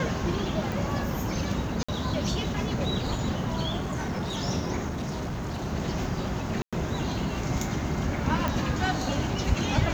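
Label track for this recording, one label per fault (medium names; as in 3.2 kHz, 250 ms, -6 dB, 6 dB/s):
0.720000	0.720000	pop
1.830000	1.890000	dropout 55 ms
3.770000	4.370000	clipped -26.5 dBFS
4.890000	5.680000	clipped -28 dBFS
6.620000	6.730000	dropout 106 ms
8.480000	8.480000	pop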